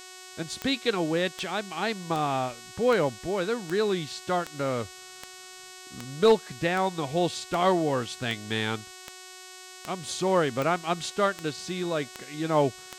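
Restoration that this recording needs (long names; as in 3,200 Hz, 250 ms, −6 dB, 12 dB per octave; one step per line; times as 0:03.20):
click removal
hum removal 370.3 Hz, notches 23
broadband denoise 27 dB, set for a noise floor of −46 dBFS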